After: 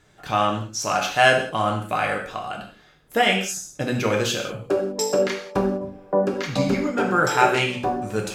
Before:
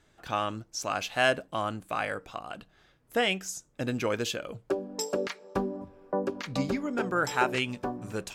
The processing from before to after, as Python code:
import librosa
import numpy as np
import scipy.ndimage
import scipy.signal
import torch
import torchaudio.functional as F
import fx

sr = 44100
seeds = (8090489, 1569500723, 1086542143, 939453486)

y = fx.rev_gated(x, sr, seeds[0], gate_ms=220, shape='falling', drr_db=0.0)
y = F.gain(torch.from_numpy(y), 5.5).numpy()